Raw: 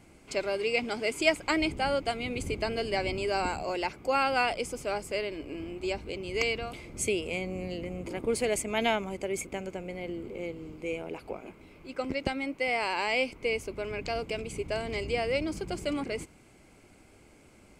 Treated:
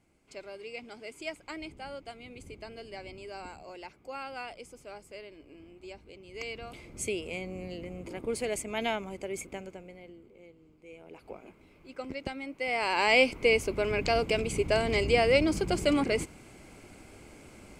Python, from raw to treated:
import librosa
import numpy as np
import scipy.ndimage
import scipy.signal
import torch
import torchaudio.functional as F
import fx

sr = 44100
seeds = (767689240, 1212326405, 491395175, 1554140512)

y = fx.gain(x, sr, db=fx.line((6.28, -13.5), (6.77, -4.0), (9.55, -4.0), (10.32, -17.0), (10.85, -17.0), (11.31, -6.0), (12.49, -6.0), (13.12, 6.0)))